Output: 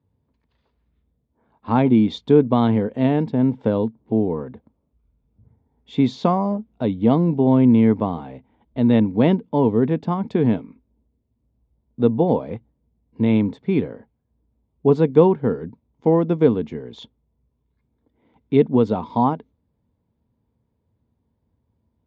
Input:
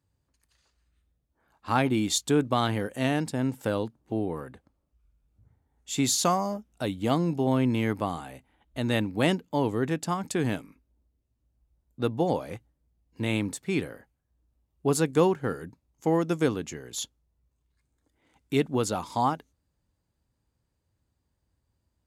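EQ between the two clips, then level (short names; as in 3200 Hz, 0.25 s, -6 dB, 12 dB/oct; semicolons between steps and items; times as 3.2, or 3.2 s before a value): speaker cabinet 110–4900 Hz, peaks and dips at 230 Hz +9 dB, 450 Hz +9 dB, 660 Hz +4 dB, 960 Hz +9 dB, 2200 Hz +6 dB, 3500 Hz +8 dB; tilt -4 dB/oct; -2.5 dB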